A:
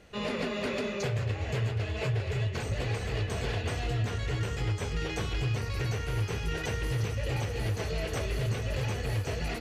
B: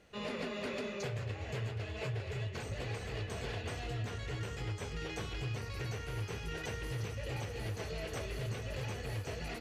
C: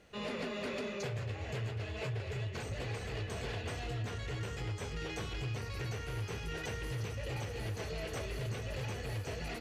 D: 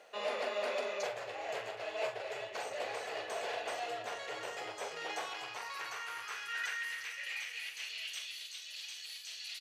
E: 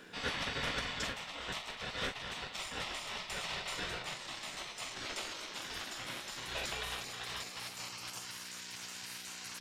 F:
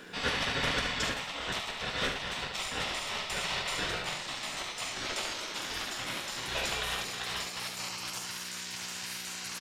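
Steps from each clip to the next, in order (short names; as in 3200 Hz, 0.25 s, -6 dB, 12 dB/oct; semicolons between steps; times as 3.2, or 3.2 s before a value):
low shelf 110 Hz -4.5 dB; gain -6.5 dB
soft clip -31 dBFS, distortion -22 dB; gain +1.5 dB
reverse; upward compressor, threshold -41 dBFS; reverse; high-pass sweep 650 Hz -> 3700 Hz, 4.93–8.52; doubler 44 ms -8 dB; gain +1 dB
ring modulator 960 Hz; buzz 60 Hz, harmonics 36, -59 dBFS -8 dB/oct; spectral gate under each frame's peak -10 dB weak; gain +8 dB
echo 72 ms -7 dB; gain +5.5 dB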